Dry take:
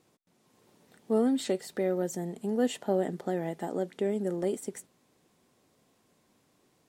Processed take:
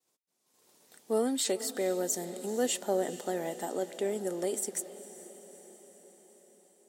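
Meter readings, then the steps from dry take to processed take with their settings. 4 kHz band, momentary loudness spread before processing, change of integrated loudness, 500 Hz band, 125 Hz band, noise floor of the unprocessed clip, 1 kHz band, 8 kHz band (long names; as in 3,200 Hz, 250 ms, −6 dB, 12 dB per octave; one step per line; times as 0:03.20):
+5.0 dB, 7 LU, −1.0 dB, −1.0 dB, −9.0 dB, −70 dBFS, 0.0 dB, +10.5 dB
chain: downward expander −59 dBFS
bass and treble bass −12 dB, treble +11 dB
on a send: feedback delay with all-pass diffusion 452 ms, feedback 61%, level −15 dB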